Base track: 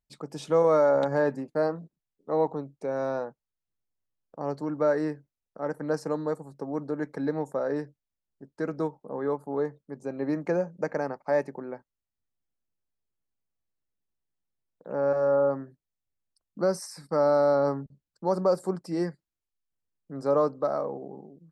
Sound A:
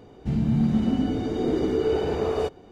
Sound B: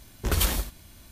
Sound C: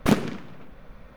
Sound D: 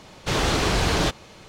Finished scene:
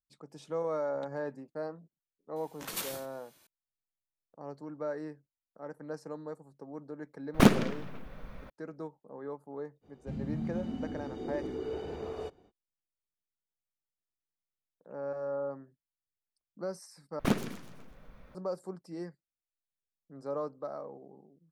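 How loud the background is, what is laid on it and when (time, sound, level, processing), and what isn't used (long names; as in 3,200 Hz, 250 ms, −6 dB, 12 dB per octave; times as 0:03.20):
base track −12 dB
0:02.36: mix in B −9.5 dB + gate on every frequency bin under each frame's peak −15 dB weak
0:07.34: mix in C
0:09.81: mix in A −14 dB, fades 0.05 s
0:17.19: overwrite with C −8 dB + delay with a high-pass on its return 125 ms, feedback 43%, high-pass 5,000 Hz, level −5 dB
not used: D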